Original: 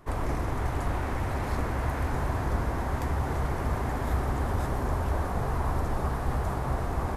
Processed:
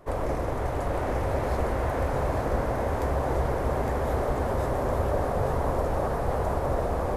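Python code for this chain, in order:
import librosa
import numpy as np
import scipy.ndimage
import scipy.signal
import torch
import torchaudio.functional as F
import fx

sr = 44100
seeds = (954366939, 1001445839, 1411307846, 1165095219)

y = fx.peak_eq(x, sr, hz=540.0, db=11.5, octaves=0.82)
y = y + 10.0 ** (-4.5 / 20.0) * np.pad(y, (int(860 * sr / 1000.0), 0))[:len(y)]
y = y * librosa.db_to_amplitude(-1.5)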